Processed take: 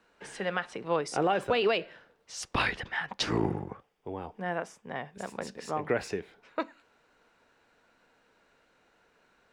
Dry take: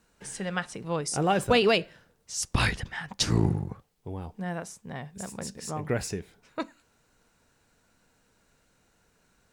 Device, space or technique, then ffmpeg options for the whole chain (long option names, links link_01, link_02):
DJ mixer with the lows and highs turned down: -filter_complex "[0:a]acrossover=split=280 4000:gain=0.2 1 0.141[link_01][link_02][link_03];[link_01][link_02][link_03]amix=inputs=3:normalize=0,alimiter=limit=-20.5dB:level=0:latency=1:release=168,asettb=1/sr,asplit=3[link_04][link_05][link_06];[link_04]atrim=end=3.284[link_07];[link_05]atrim=start=3.28:end=5.15,asetpts=PTS-STARTPTS,afade=type=in:duration=0.004:curve=qsin,afade=type=out:start_time=1.866:duration=0.004:curve=qsin,bandreject=frequency=4100:width=5.6[link_08];[link_06]atrim=start=5.146[link_09];[link_07][link_08]acrossfade=duration=0.004:curve1=hsin:curve2=qsin[link_10];[link_10][link_09]acrossfade=duration=0.004:curve1=qsin:curve2=hsin,volume=4dB"